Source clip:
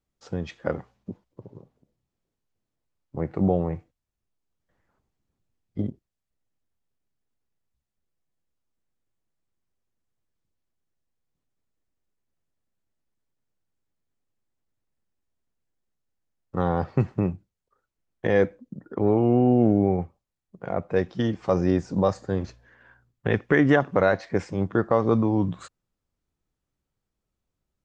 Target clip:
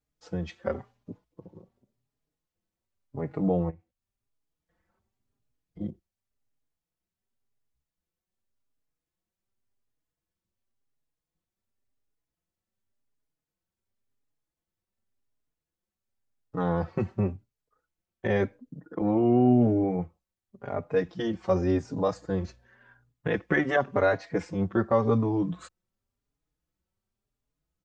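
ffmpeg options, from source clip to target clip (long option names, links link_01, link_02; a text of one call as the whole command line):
ffmpeg -i in.wav -filter_complex "[0:a]asplit=3[link_01][link_02][link_03];[link_01]afade=type=out:start_time=3.69:duration=0.02[link_04];[link_02]acompressor=threshold=-42dB:ratio=16,afade=type=in:start_time=3.69:duration=0.02,afade=type=out:start_time=5.8:duration=0.02[link_05];[link_03]afade=type=in:start_time=5.8:duration=0.02[link_06];[link_04][link_05][link_06]amix=inputs=3:normalize=0,asplit=2[link_07][link_08];[link_08]adelay=4.4,afreqshift=0.91[link_09];[link_07][link_09]amix=inputs=2:normalize=1" out.wav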